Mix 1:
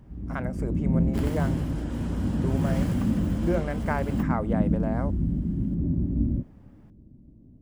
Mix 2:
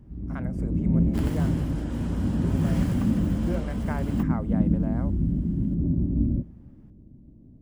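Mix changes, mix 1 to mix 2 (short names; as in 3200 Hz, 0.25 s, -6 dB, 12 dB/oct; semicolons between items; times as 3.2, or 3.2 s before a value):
speech -6.5 dB; reverb: on, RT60 1.4 s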